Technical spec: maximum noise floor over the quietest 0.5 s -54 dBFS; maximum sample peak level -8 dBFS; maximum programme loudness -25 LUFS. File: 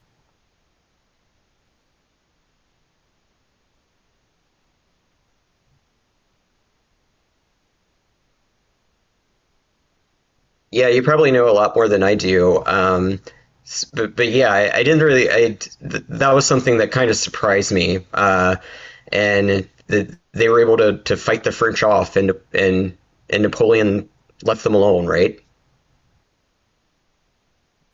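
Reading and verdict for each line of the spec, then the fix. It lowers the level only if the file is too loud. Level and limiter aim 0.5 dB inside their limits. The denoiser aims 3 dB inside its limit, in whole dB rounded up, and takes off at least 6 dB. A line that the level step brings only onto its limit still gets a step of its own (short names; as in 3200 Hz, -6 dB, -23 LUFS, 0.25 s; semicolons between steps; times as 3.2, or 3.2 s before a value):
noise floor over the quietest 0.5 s -66 dBFS: OK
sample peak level -4.5 dBFS: fail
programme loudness -16.5 LUFS: fail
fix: gain -9 dB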